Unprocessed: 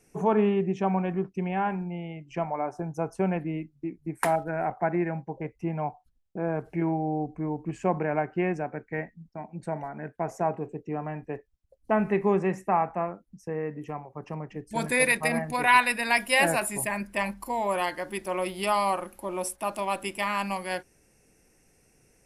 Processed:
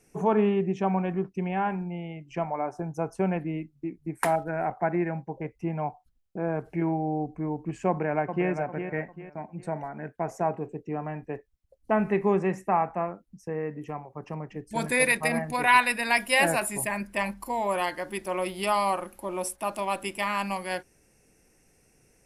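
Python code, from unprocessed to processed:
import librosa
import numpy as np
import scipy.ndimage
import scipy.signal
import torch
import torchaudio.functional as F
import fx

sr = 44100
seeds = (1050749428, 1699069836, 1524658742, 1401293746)

y = fx.echo_throw(x, sr, start_s=7.88, length_s=0.61, ms=400, feedback_pct=35, wet_db=-8.0)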